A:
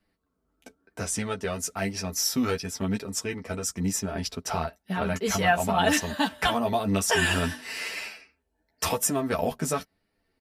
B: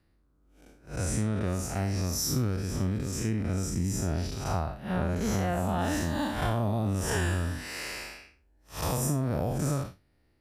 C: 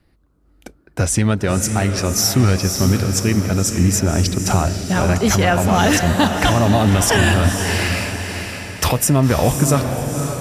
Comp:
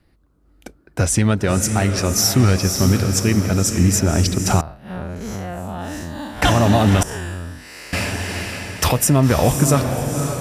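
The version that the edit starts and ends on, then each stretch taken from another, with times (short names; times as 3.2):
C
4.61–6.42 from B
7.03–7.93 from B
not used: A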